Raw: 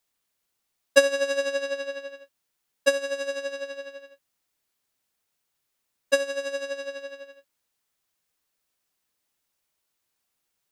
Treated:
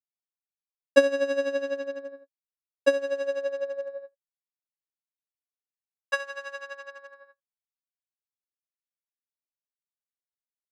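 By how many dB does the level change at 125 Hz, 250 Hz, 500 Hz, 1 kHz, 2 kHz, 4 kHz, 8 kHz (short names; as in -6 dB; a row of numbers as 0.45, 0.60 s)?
n/a, +4.5 dB, 0.0 dB, 0.0 dB, -3.0 dB, -7.5 dB, -11.5 dB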